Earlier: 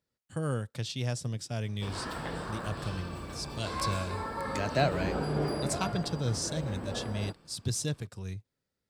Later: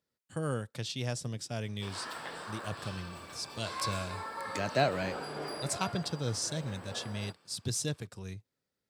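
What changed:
speech: add low-shelf EQ 88 Hz −11 dB
background: add high-pass filter 1,000 Hz 6 dB per octave

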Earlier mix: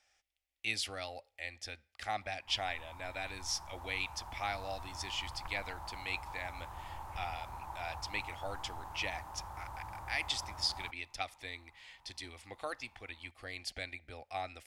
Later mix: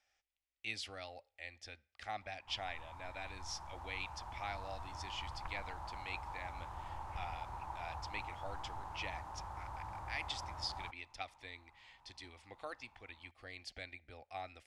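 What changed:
speech −5.5 dB
master: add high-frequency loss of the air 53 metres

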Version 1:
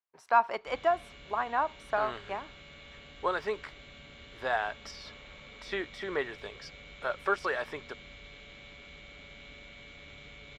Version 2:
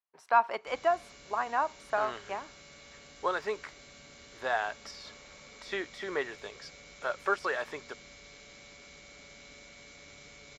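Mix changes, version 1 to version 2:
background: add high shelf with overshoot 4,200 Hz +8 dB, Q 3
master: add low-shelf EQ 120 Hz −10.5 dB

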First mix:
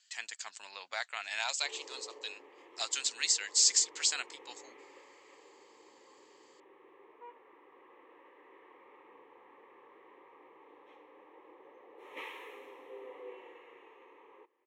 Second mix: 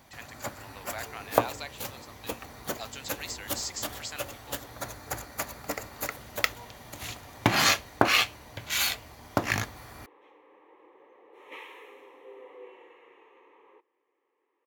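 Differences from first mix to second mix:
speech: add spectral tilt −4 dB per octave
first sound: unmuted
second sound: entry −0.65 s

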